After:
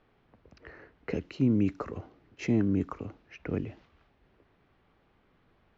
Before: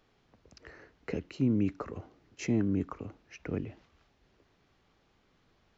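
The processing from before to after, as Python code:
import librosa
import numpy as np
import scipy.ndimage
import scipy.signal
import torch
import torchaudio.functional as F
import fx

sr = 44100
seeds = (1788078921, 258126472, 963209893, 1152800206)

y = fx.env_lowpass(x, sr, base_hz=2500.0, full_db=-29.0)
y = y * librosa.db_to_amplitude(2.5)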